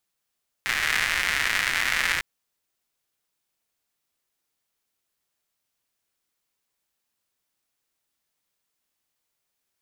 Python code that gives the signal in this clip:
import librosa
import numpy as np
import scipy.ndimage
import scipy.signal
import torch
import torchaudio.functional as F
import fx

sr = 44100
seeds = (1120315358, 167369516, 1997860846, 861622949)

y = fx.rain(sr, seeds[0], length_s=1.55, drops_per_s=220.0, hz=1900.0, bed_db=-16.0)